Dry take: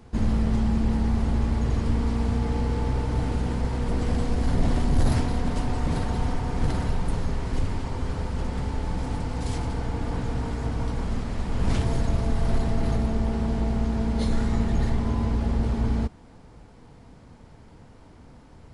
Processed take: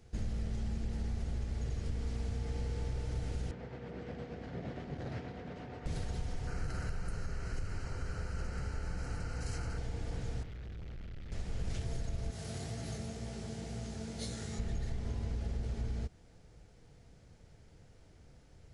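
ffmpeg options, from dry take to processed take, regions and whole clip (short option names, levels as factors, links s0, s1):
-filter_complex "[0:a]asettb=1/sr,asplit=3[s0][s1][s2];[s0]atrim=end=3.514[s3];[s1]atrim=start=3.51:end=5.86,asetpts=PTS-STARTPTS,afade=t=in:d=0.004:c=qsin,afade=t=out:st=2.346:d=0.004:c=qsin,tremolo=f=8.5:d=0.36,highpass=160,lowpass=2300[s4];[s2]atrim=start=5.856[s5];[s3][s4]acrossfade=d=0.004:c1=hsin:c2=qsin[s6];[s6][s5]acrossfade=d=0.004:c1=qsin:c2=hsin,asettb=1/sr,asplit=3[s7][s8][s9];[s7]atrim=end=6.474[s10];[s8]atrim=start=6.47:end=9.78,asetpts=PTS-STARTPTS,afade=t=in:d=0.004:c=qsin,afade=t=out:st=3.306:d=0.004:c=qsin,asuperstop=centerf=3500:order=4:qfactor=4.4,equalizer=f=1400:w=3.5:g=13[s11];[s9]atrim=start=9.776[s12];[s10][s11]acrossfade=d=0.004:c1=hsin:c2=qsin[s13];[s13][s12]acrossfade=d=0.004:c1=qsin:c2=hsin,asettb=1/sr,asplit=3[s14][s15][s16];[s14]atrim=end=10.434[s17];[s15]atrim=start=10.43:end=11.32,asetpts=PTS-STARTPTS,afade=t=in:d=0.004:c=qsin,afade=t=out:st=0.886:d=0.004:c=qsin,lowpass=f=3600:w=0.5412,lowpass=f=3600:w=1.3066,equalizer=f=560:w=0.83:g=-10.5,volume=47.3,asoftclip=hard,volume=0.0211[s18];[s16]atrim=start=11.316[s19];[s17][s18]acrossfade=d=0.004:c1=hsin:c2=qsin[s20];[s20][s19]acrossfade=d=0.004:c1=qsin:c2=hsin,asettb=1/sr,asplit=3[s21][s22][s23];[s21]atrim=end=12.314[s24];[s22]atrim=start=12.31:end=14.59,asetpts=PTS-STARTPTS,afade=t=in:d=0.004:c=qsin,afade=t=out:st=2.276:d=0.004:c=qsin,highpass=f=81:w=0.5412,highpass=f=81:w=1.3066,highshelf=f=4700:g=10.5,flanger=delay=16.5:depth=6.5:speed=2[s25];[s23]atrim=start=14.586[s26];[s24][s25]acrossfade=d=0.004:c1=hsin:c2=qsin[s27];[s27][s26]acrossfade=d=0.004:c1=qsin:c2=hsin,equalizer=f=250:t=o:w=0.67:g=-9,equalizer=f=1000:t=o:w=0.67:g=-12,equalizer=f=6300:t=o:w=0.67:g=5,acompressor=threshold=0.0631:ratio=6,volume=0.398"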